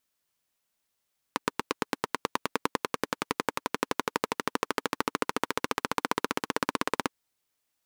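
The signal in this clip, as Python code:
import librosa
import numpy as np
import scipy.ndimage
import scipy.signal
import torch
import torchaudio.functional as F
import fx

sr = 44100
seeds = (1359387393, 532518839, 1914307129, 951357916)

y = fx.engine_single_rev(sr, seeds[0], length_s=5.75, rpm=1000, resonances_hz=(290.0, 440.0, 960.0), end_rpm=2000)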